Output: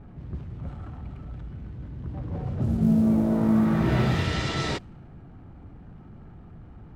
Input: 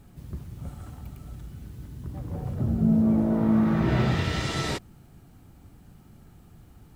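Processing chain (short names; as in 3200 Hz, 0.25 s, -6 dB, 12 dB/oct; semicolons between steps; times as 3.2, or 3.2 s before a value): G.711 law mismatch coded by mu; low-pass opened by the level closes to 1500 Hz, open at -19 dBFS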